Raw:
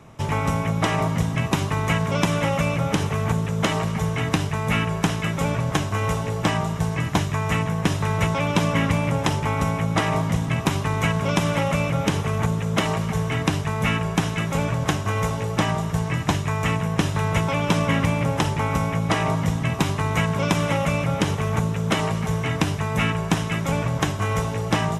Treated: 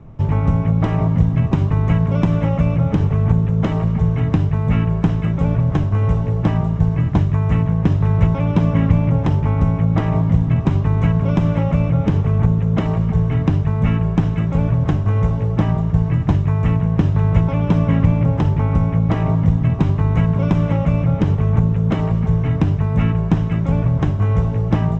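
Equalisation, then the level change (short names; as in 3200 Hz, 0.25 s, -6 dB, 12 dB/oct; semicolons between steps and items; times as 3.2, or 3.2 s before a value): brick-wall FIR low-pass 8300 Hz; air absorption 51 m; tilt -4 dB/oct; -3.5 dB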